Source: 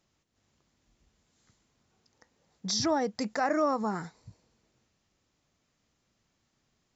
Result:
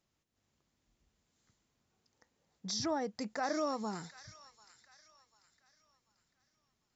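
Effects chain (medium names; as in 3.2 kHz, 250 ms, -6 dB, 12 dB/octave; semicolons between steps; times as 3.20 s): 3.54–4.20 s: resonant high shelf 2.3 kHz +8.5 dB, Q 1.5; on a send: feedback echo behind a high-pass 742 ms, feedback 38%, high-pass 1.8 kHz, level -11.5 dB; on the sum: trim -7 dB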